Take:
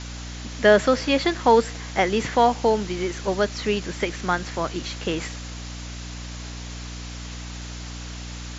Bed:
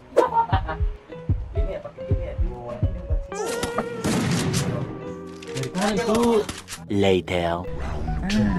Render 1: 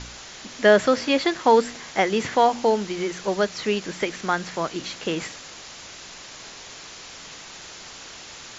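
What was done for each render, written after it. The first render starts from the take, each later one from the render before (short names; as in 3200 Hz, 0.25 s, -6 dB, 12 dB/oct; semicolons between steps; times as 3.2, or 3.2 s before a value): de-hum 60 Hz, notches 5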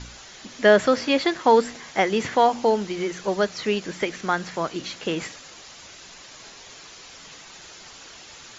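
denoiser 6 dB, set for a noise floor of -42 dBFS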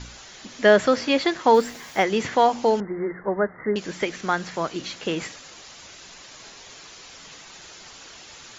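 1.54–2.03 requantised 8-bit, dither none; 2.8–3.76 Chebyshev low-pass 2100 Hz, order 10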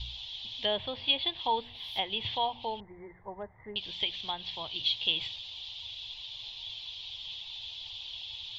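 treble ducked by the level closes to 2000 Hz, closed at -17.5 dBFS; EQ curve 110 Hz 0 dB, 170 Hz -19 dB, 280 Hz -22 dB, 560 Hz -19 dB, 920 Hz -9 dB, 1400 Hz -29 dB, 2100 Hz -14 dB, 3400 Hz +13 dB, 7000 Hz -26 dB, 11000 Hz +4 dB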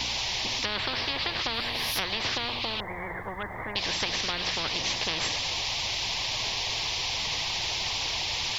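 spectral compressor 10:1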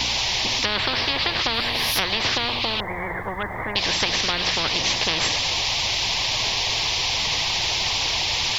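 gain +7 dB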